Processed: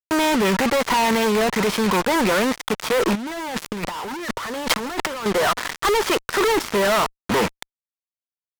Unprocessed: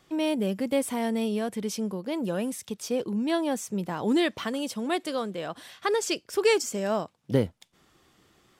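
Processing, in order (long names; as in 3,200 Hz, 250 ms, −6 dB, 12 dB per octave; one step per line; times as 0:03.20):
loose part that buzzes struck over −32 dBFS, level −31 dBFS
leveller curve on the samples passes 3
loudspeaker in its box 260–3,200 Hz, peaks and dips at 280 Hz −8 dB, 560 Hz −4 dB, 940 Hz +10 dB, 1,300 Hz +8 dB, 1,900 Hz +6 dB, 2,800 Hz −5 dB
fuzz pedal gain 42 dB, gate −35 dBFS
0:03.15–0:05.26: compressor whose output falls as the input rises −21 dBFS, ratio −0.5
level −3.5 dB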